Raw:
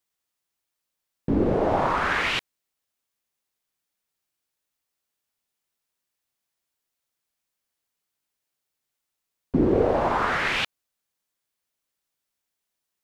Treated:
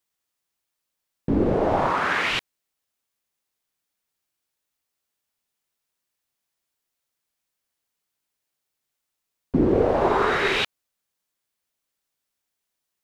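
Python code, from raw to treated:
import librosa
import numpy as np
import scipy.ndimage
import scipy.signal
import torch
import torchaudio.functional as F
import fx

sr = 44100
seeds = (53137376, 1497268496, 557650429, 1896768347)

y = fx.highpass(x, sr, hz=130.0, slope=12, at=(1.9, 2.31))
y = fx.small_body(y, sr, hz=(400.0, 3800.0), ring_ms=45, db=fx.line((10.0, 12.0), (10.62, 16.0)), at=(10.0, 10.62), fade=0.02)
y = y * librosa.db_to_amplitude(1.0)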